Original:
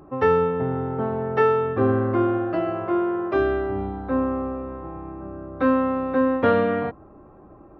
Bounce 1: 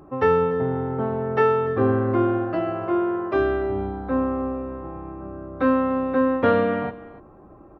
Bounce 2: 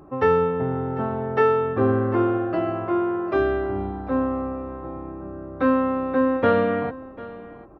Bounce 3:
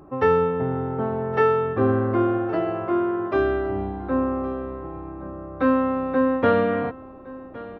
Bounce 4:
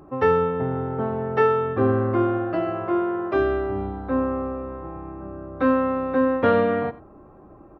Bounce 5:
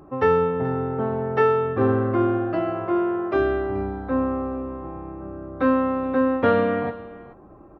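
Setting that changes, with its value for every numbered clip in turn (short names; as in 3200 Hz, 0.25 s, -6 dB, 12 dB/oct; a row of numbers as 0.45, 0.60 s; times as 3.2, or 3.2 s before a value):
echo, time: 291, 746, 1115, 90, 429 ms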